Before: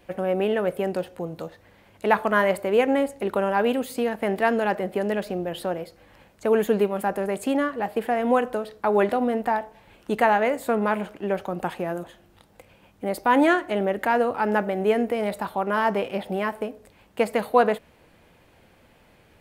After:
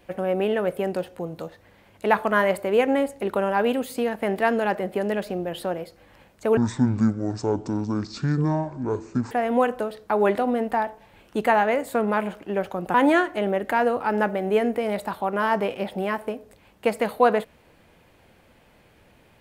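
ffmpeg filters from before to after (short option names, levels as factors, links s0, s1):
-filter_complex "[0:a]asplit=4[s0][s1][s2][s3];[s0]atrim=end=6.574[s4];[s1]atrim=start=6.57:end=8.05,asetpts=PTS-STARTPTS,asetrate=23814,aresample=44100[s5];[s2]atrim=start=8.046:end=11.682[s6];[s3]atrim=start=13.278[s7];[s4][s5]acrossfade=d=0.004:c1=hsin:c2=hsin[s8];[s8][s6]acrossfade=d=0.004:c1=hsin:c2=hsin[s9];[s9][s7]acrossfade=d=0.004:c1=hsin:c2=hsin"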